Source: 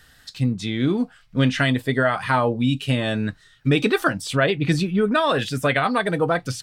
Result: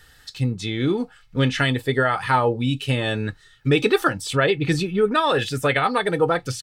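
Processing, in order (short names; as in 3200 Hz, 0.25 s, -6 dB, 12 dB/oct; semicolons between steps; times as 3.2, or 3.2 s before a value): comb 2.3 ms, depth 43%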